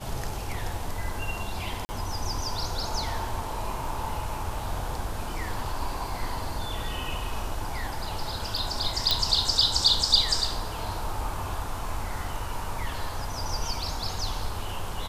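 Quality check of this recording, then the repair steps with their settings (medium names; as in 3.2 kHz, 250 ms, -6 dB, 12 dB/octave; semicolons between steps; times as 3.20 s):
1.85–1.89 s: dropout 40 ms
9.11 s: pop -7 dBFS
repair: de-click; interpolate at 1.85 s, 40 ms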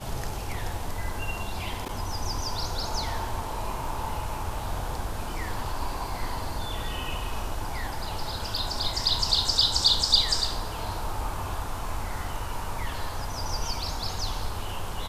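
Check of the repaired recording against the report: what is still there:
nothing left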